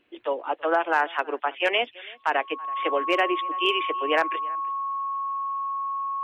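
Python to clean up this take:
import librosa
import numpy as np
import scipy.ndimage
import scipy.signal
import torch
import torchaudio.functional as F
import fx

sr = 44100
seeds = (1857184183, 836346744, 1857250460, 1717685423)

y = fx.fix_declip(x, sr, threshold_db=-12.0)
y = fx.notch(y, sr, hz=1100.0, q=30.0)
y = fx.fix_echo_inverse(y, sr, delay_ms=329, level_db=-23.5)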